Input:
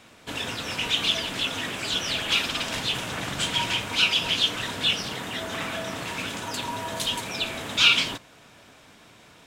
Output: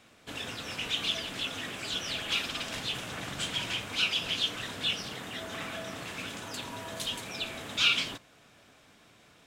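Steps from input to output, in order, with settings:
notch filter 940 Hz, Q 16
level −7 dB

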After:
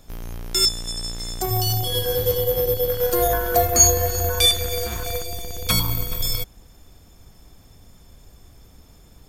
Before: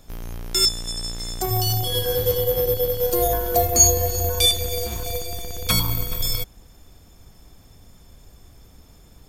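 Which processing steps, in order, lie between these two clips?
0:02.88–0:05.23: parametric band 1,500 Hz +9.5 dB 1 octave

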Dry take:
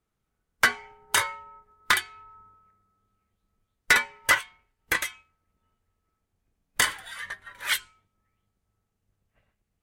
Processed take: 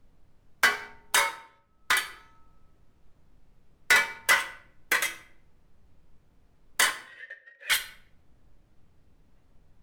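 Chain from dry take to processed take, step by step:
high-pass filter 340 Hz 12 dB per octave
leveller curve on the samples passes 2
background noise brown −54 dBFS
0:01.29–0:02.10: fade in
0:06.90–0:07.70: formant filter e
rectangular room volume 100 cubic metres, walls mixed, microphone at 0.34 metres
level −5.5 dB

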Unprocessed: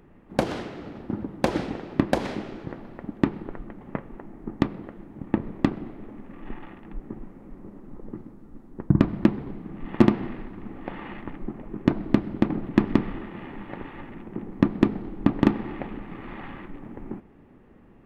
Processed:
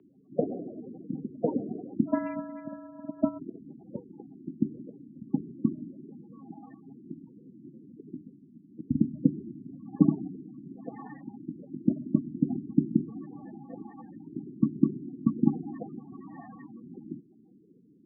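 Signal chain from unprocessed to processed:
0:02.07–0:03.39: samples sorted by size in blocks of 128 samples
spectral peaks only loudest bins 16
single-sideband voice off tune −57 Hz 270–3,300 Hz

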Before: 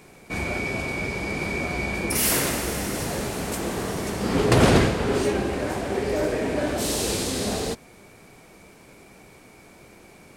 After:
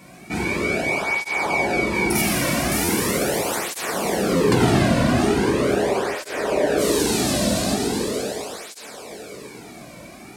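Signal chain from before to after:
0:01.02–0:01.62: parametric band 870 Hz +11 dB 0.57 octaves
echo with a time of its own for lows and highs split 330 Hz, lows 236 ms, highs 571 ms, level −12.5 dB
dense smooth reverb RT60 4 s, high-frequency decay 0.8×, DRR −2 dB
downward compressor 2 to 1, threshold −22 dBFS, peak gain reduction 7.5 dB
0:02.21–0:02.72: high-shelf EQ 7,900 Hz −9 dB
buffer that repeats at 0:02.84/0:04.36, samples 512, times 3
through-zero flanger with one copy inverted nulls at 0.4 Hz, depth 2.5 ms
level +6 dB

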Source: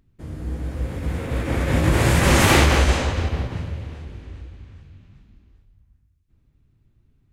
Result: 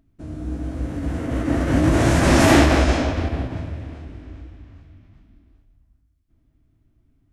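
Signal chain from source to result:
formants moved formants −3 semitones
hollow resonant body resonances 290/650 Hz, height 12 dB, ringing for 45 ms
level −1.5 dB

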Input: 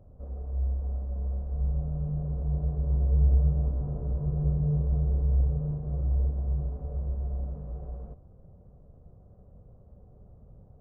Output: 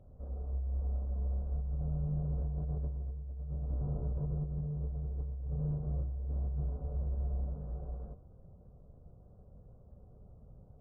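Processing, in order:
hum removal 93.79 Hz, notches 22
compressor whose output falls as the input rises −29 dBFS, ratio −1
level −5 dB
MP3 16 kbit/s 22,050 Hz

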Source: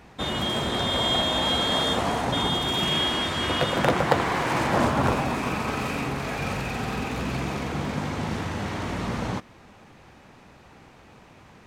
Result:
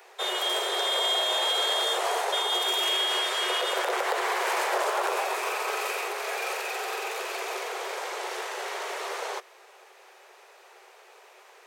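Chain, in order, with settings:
Chebyshev high-pass filter 370 Hz, order 8
high-shelf EQ 7,700 Hz +11.5 dB
brickwall limiter −17 dBFS, peak gain reduction 9.5 dB

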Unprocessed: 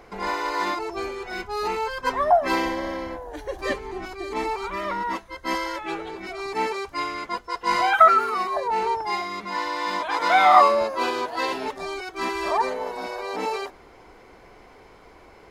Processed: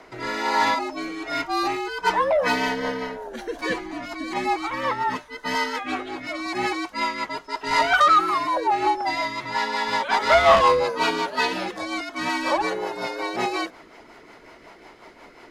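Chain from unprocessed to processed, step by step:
mid-hump overdrive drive 16 dB, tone 8,000 Hz, clips at −2 dBFS
rotating-speaker cabinet horn 1.2 Hz, later 5.5 Hz, at 0:01.84
frequency shifter −72 Hz
level −2.5 dB

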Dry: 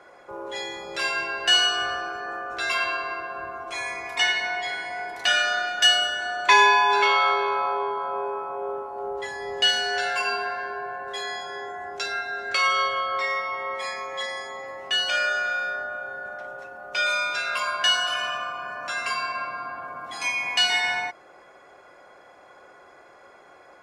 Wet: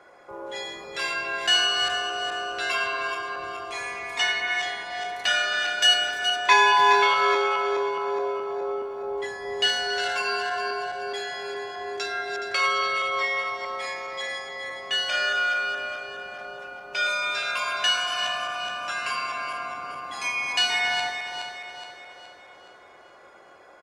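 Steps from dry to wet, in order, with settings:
feedback delay that plays each chunk backwards 210 ms, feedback 68%, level −7.5 dB
far-end echo of a speakerphone 280 ms, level −11 dB
level −2 dB

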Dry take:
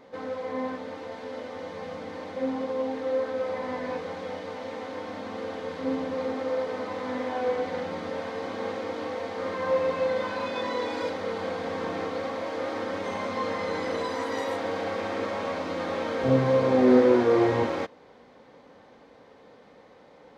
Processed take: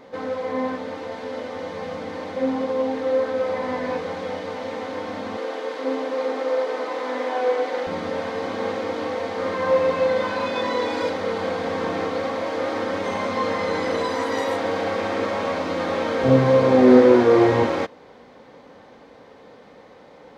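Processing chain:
0:05.37–0:07.87: high-pass filter 300 Hz 24 dB per octave
level +6 dB

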